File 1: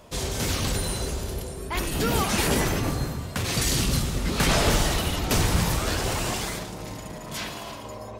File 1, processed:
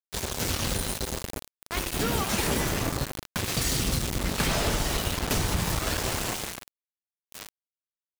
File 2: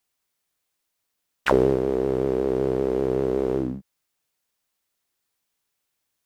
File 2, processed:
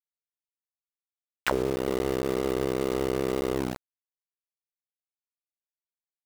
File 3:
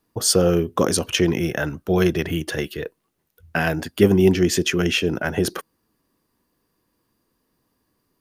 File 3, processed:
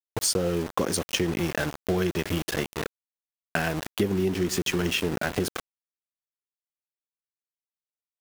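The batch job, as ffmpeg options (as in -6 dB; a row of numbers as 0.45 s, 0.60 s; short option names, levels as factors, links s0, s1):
-filter_complex "[0:a]asplit=2[s0][s1];[s1]adelay=309,lowpass=f=1400:p=1,volume=0.119,asplit=2[s2][s3];[s3]adelay=309,lowpass=f=1400:p=1,volume=0.5,asplit=2[s4][s5];[s5]adelay=309,lowpass=f=1400:p=1,volume=0.5,asplit=2[s6][s7];[s7]adelay=309,lowpass=f=1400:p=1,volume=0.5[s8];[s0][s2][s4][s6][s8]amix=inputs=5:normalize=0,aeval=exprs='val(0)*gte(abs(val(0)),0.0596)':c=same,acompressor=threshold=0.0794:ratio=6"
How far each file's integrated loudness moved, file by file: -2.5 LU, -5.0 LU, -7.0 LU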